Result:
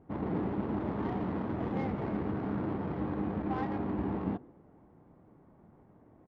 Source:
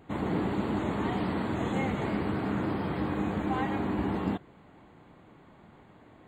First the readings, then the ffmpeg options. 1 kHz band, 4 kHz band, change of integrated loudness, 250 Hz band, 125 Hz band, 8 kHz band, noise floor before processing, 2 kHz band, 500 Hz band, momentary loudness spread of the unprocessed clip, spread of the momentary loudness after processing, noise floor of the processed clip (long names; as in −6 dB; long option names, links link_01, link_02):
−5.0 dB, below −10 dB, −3.5 dB, −3.0 dB, −3.0 dB, can't be measured, −56 dBFS, −9.5 dB, −3.5 dB, 1 LU, 1 LU, −61 dBFS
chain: -filter_complex "[0:a]asplit=5[link_01][link_02][link_03][link_04][link_05];[link_02]adelay=106,afreqshift=47,volume=-23.5dB[link_06];[link_03]adelay=212,afreqshift=94,volume=-28.7dB[link_07];[link_04]adelay=318,afreqshift=141,volume=-33.9dB[link_08];[link_05]adelay=424,afreqshift=188,volume=-39.1dB[link_09];[link_01][link_06][link_07][link_08][link_09]amix=inputs=5:normalize=0,adynamicsmooth=sensitivity=1.5:basefreq=960,volume=-3dB"